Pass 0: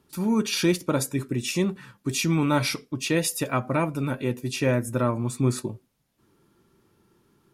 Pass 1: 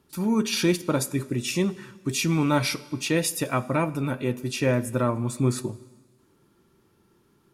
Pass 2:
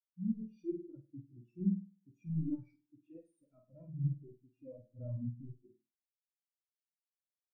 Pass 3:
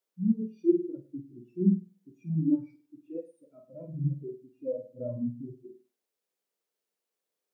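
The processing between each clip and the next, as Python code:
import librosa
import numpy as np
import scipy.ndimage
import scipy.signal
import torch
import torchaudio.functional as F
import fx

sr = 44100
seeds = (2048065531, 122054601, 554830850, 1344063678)

y1 = fx.rev_plate(x, sr, seeds[0], rt60_s=1.5, hf_ratio=1.0, predelay_ms=0, drr_db=17.0)
y2 = np.clip(y1, -10.0 ** (-25.5 / 20.0), 10.0 ** (-25.5 / 20.0))
y2 = fx.room_flutter(y2, sr, wall_m=8.6, rt60_s=1.1)
y2 = fx.spectral_expand(y2, sr, expansion=4.0)
y2 = y2 * librosa.db_to_amplitude(-6.5)
y3 = scipy.signal.sosfilt(scipy.signal.butter(4, 150.0, 'highpass', fs=sr, output='sos'), y2)
y3 = fx.peak_eq(y3, sr, hz=450.0, db=14.0, octaves=0.87)
y3 = y3 + 10.0 ** (-20.5 / 20.0) * np.pad(y3, (int(108 * sr / 1000.0), 0))[:len(y3)]
y3 = y3 * librosa.db_to_amplitude(7.5)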